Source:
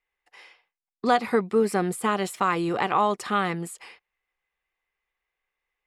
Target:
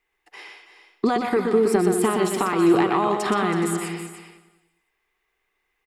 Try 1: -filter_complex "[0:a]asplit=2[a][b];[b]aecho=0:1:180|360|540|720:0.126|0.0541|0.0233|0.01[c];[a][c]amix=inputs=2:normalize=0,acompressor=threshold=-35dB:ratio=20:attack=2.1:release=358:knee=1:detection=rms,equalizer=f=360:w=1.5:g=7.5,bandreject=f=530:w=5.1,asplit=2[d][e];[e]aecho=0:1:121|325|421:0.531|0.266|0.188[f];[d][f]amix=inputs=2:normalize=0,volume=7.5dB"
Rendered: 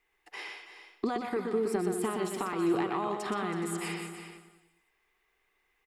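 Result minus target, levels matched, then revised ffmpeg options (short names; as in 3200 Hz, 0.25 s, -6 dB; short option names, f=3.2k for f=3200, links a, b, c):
compressor: peak gain reduction +11 dB
-filter_complex "[0:a]asplit=2[a][b];[b]aecho=0:1:180|360|540|720:0.126|0.0541|0.0233|0.01[c];[a][c]amix=inputs=2:normalize=0,acompressor=threshold=-23.5dB:ratio=20:attack=2.1:release=358:knee=1:detection=rms,equalizer=f=360:w=1.5:g=7.5,bandreject=f=530:w=5.1,asplit=2[d][e];[e]aecho=0:1:121|325|421:0.531|0.266|0.188[f];[d][f]amix=inputs=2:normalize=0,volume=7.5dB"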